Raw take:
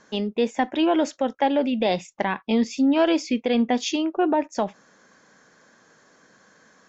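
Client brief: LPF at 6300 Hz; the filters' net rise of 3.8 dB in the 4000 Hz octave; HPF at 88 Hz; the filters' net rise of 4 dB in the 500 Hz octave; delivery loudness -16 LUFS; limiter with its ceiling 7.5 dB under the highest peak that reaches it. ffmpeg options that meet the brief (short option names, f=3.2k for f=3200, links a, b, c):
-af "highpass=88,lowpass=6.3k,equalizer=f=500:t=o:g=5,equalizer=f=4k:t=o:g=5.5,volume=8.5dB,alimiter=limit=-6.5dB:level=0:latency=1"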